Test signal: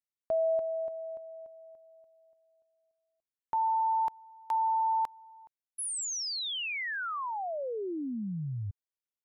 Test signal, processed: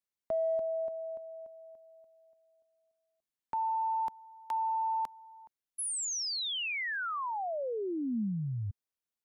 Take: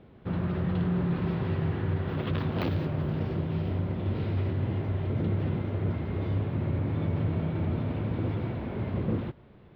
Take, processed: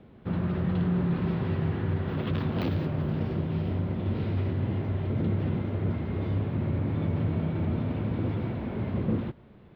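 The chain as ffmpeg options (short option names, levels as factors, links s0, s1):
-filter_complex "[0:a]equalizer=f=220:w=2.6:g=3.5,acrossover=split=430|3000[s0][s1][s2];[s1]acompressor=threshold=0.0316:ratio=6:attack=0.23:release=50:knee=2.83:detection=peak[s3];[s0][s3][s2]amix=inputs=3:normalize=0"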